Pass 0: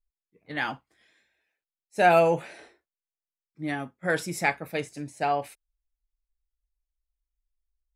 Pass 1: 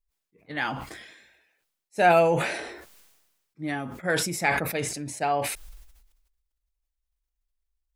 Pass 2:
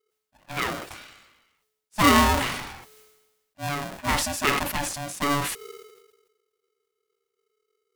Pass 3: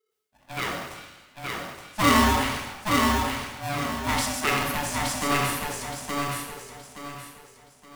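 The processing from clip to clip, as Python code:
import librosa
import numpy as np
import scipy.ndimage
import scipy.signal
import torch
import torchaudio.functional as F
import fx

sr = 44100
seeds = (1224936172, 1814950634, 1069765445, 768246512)

y1 = fx.sustainer(x, sr, db_per_s=49.0)
y2 = y1 * np.sign(np.sin(2.0 * np.pi * 430.0 * np.arange(len(y1)) / sr))
y2 = y2 * librosa.db_to_amplitude(1.0)
y3 = fx.echo_feedback(y2, sr, ms=871, feedback_pct=32, wet_db=-3.0)
y3 = fx.rev_plate(y3, sr, seeds[0], rt60_s=0.91, hf_ratio=0.9, predelay_ms=0, drr_db=1.5)
y3 = y3 * librosa.db_to_amplitude(-3.5)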